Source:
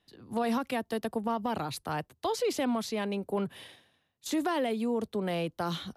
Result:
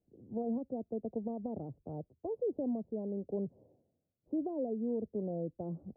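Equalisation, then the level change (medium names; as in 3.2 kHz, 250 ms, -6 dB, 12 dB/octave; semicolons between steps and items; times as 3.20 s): steep low-pass 620 Hz 36 dB/octave; -4.5 dB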